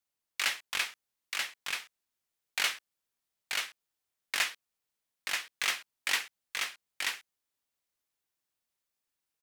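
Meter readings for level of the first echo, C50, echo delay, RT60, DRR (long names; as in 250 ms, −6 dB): −3.5 dB, no reverb audible, 933 ms, no reverb audible, no reverb audible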